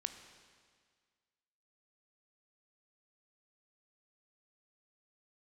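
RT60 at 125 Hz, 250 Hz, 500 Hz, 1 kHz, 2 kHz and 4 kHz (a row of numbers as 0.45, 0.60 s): 1.8, 1.8, 1.8, 1.8, 1.8, 1.7 s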